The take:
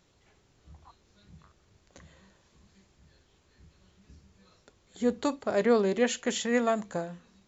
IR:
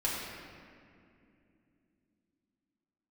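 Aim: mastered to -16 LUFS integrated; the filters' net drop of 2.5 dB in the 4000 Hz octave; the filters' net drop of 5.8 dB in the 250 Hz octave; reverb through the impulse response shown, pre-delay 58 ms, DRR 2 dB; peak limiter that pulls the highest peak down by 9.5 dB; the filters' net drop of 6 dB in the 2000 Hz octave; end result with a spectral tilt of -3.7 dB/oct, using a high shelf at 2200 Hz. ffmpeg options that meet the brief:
-filter_complex "[0:a]equalizer=f=250:t=o:g=-6.5,equalizer=f=2k:t=o:g=-9,highshelf=f=2.2k:g=6,equalizer=f=4k:t=o:g=-5.5,alimiter=level_in=0.5dB:limit=-24dB:level=0:latency=1,volume=-0.5dB,asplit=2[a][b];[1:a]atrim=start_sample=2205,adelay=58[c];[b][c]afir=irnorm=-1:irlink=0,volume=-9dB[d];[a][d]amix=inputs=2:normalize=0,volume=17dB"

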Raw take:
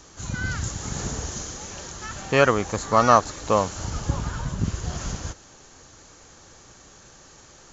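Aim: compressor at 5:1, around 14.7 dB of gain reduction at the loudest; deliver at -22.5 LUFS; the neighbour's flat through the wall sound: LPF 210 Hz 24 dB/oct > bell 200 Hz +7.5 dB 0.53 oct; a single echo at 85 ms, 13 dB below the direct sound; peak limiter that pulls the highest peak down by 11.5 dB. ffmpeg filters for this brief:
-af "acompressor=threshold=-28dB:ratio=5,alimiter=level_in=3dB:limit=-24dB:level=0:latency=1,volume=-3dB,lowpass=f=210:w=0.5412,lowpass=f=210:w=1.3066,equalizer=f=200:t=o:w=0.53:g=7.5,aecho=1:1:85:0.224,volume=18dB"

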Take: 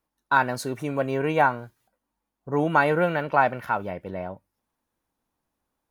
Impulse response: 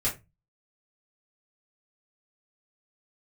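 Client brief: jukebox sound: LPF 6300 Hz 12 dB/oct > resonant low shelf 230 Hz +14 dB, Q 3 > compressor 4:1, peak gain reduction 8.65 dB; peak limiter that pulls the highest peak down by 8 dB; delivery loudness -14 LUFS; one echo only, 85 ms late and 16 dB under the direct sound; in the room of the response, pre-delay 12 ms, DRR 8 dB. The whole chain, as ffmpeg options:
-filter_complex "[0:a]alimiter=limit=-14dB:level=0:latency=1,aecho=1:1:85:0.158,asplit=2[a][b];[1:a]atrim=start_sample=2205,adelay=12[c];[b][c]afir=irnorm=-1:irlink=0,volume=-15.5dB[d];[a][d]amix=inputs=2:normalize=0,lowpass=6.3k,lowshelf=f=230:t=q:w=3:g=14,acompressor=threshold=-15dB:ratio=4,volume=6.5dB"

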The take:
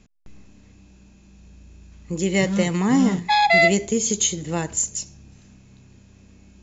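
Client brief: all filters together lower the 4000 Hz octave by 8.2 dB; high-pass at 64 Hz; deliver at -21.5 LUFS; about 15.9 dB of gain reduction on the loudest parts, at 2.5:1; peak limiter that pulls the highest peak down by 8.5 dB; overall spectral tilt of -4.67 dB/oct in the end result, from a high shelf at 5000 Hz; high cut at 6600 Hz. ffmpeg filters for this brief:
-af "highpass=64,lowpass=6.6k,equalizer=f=4k:t=o:g=-8,highshelf=f=5k:g=-4.5,acompressor=threshold=-39dB:ratio=2.5,volume=19.5dB,alimiter=limit=-11.5dB:level=0:latency=1"

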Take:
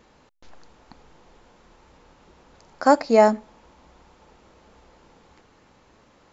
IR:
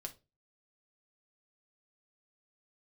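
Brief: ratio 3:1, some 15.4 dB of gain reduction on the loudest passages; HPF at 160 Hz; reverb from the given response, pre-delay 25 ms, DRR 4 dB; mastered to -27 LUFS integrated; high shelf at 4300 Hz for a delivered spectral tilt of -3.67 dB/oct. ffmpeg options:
-filter_complex "[0:a]highpass=160,highshelf=f=4.3k:g=-8,acompressor=threshold=-31dB:ratio=3,asplit=2[a][b];[1:a]atrim=start_sample=2205,adelay=25[c];[b][c]afir=irnorm=-1:irlink=0,volume=-1dB[d];[a][d]amix=inputs=2:normalize=0,volume=5dB"

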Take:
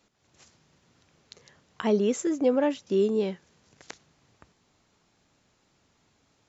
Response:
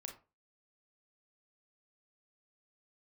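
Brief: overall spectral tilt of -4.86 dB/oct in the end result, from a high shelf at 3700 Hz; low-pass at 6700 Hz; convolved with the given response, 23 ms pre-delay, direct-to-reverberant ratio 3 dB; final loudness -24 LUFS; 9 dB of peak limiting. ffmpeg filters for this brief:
-filter_complex "[0:a]lowpass=6.7k,highshelf=f=3.7k:g=4,alimiter=limit=-22dB:level=0:latency=1,asplit=2[a][b];[1:a]atrim=start_sample=2205,adelay=23[c];[b][c]afir=irnorm=-1:irlink=0,volume=1dB[d];[a][d]amix=inputs=2:normalize=0,volume=5.5dB"

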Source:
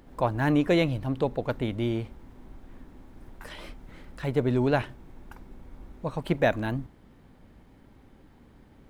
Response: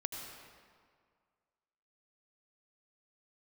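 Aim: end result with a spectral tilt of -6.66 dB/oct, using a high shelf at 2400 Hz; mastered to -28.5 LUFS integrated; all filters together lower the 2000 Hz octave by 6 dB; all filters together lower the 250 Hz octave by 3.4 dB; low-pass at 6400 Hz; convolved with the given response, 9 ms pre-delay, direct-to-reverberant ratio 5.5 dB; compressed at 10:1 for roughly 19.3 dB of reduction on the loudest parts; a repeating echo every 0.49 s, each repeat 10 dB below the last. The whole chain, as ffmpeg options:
-filter_complex "[0:a]lowpass=6.4k,equalizer=f=250:t=o:g=-4.5,equalizer=f=2k:t=o:g=-5,highshelf=f=2.4k:g=-5.5,acompressor=threshold=-41dB:ratio=10,aecho=1:1:490|980|1470|1960:0.316|0.101|0.0324|0.0104,asplit=2[a][b];[1:a]atrim=start_sample=2205,adelay=9[c];[b][c]afir=irnorm=-1:irlink=0,volume=-6dB[d];[a][d]amix=inputs=2:normalize=0,volume=18dB"

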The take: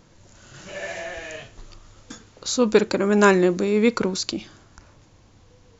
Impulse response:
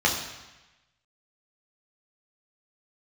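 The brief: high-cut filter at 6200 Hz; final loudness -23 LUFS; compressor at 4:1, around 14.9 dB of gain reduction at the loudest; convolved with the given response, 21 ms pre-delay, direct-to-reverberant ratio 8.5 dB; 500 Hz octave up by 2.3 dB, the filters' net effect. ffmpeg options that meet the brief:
-filter_complex "[0:a]lowpass=6.2k,equalizer=f=500:t=o:g=3,acompressor=threshold=-27dB:ratio=4,asplit=2[a][b];[1:a]atrim=start_sample=2205,adelay=21[c];[b][c]afir=irnorm=-1:irlink=0,volume=-24dB[d];[a][d]amix=inputs=2:normalize=0,volume=7.5dB"

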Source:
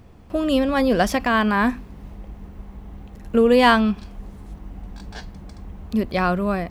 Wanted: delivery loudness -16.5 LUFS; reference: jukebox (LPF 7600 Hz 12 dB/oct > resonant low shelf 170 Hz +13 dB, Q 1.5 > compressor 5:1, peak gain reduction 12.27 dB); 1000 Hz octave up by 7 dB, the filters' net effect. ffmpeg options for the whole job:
-af "lowpass=7.6k,lowshelf=f=170:t=q:w=1.5:g=13,equalizer=f=1k:t=o:g=9,acompressor=threshold=-18dB:ratio=5,volume=8dB"

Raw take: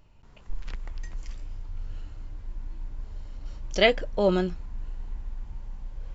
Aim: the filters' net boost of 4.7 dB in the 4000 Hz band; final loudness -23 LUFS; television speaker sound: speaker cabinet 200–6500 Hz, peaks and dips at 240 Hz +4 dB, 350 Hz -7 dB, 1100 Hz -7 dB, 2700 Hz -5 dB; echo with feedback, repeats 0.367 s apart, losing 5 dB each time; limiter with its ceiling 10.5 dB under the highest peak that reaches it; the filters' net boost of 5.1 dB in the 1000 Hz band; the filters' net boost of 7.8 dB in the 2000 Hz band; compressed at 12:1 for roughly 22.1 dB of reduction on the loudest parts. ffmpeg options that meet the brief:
-af "equalizer=f=1k:t=o:g=9,equalizer=f=2k:t=o:g=6.5,equalizer=f=4k:t=o:g=6,acompressor=threshold=-31dB:ratio=12,alimiter=level_in=7.5dB:limit=-24dB:level=0:latency=1,volume=-7.5dB,highpass=f=200:w=0.5412,highpass=f=200:w=1.3066,equalizer=f=240:t=q:w=4:g=4,equalizer=f=350:t=q:w=4:g=-7,equalizer=f=1.1k:t=q:w=4:g=-7,equalizer=f=2.7k:t=q:w=4:g=-5,lowpass=f=6.5k:w=0.5412,lowpass=f=6.5k:w=1.3066,aecho=1:1:367|734|1101|1468|1835|2202|2569:0.562|0.315|0.176|0.0988|0.0553|0.031|0.0173,volume=26.5dB"

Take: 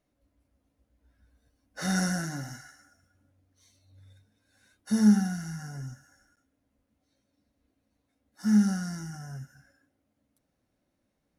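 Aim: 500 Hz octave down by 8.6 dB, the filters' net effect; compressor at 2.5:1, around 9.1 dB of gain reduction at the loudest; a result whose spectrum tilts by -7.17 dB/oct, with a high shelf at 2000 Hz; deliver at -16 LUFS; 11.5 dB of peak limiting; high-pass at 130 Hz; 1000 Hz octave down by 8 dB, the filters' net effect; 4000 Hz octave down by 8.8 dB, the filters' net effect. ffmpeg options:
-af "highpass=130,equalizer=f=500:t=o:g=-9,equalizer=f=1k:t=o:g=-7,highshelf=f=2k:g=-5,equalizer=f=4k:t=o:g=-7,acompressor=threshold=-32dB:ratio=2.5,volume=27dB,alimiter=limit=-7.5dB:level=0:latency=1"

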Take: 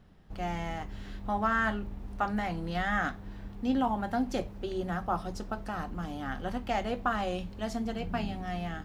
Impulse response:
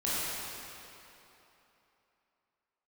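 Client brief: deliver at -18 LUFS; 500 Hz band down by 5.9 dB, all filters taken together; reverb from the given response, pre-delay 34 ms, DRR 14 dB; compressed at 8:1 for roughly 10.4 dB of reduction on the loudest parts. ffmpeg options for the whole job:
-filter_complex "[0:a]equalizer=f=500:t=o:g=-8.5,acompressor=threshold=-36dB:ratio=8,asplit=2[a][b];[1:a]atrim=start_sample=2205,adelay=34[c];[b][c]afir=irnorm=-1:irlink=0,volume=-23dB[d];[a][d]amix=inputs=2:normalize=0,volume=23.5dB"

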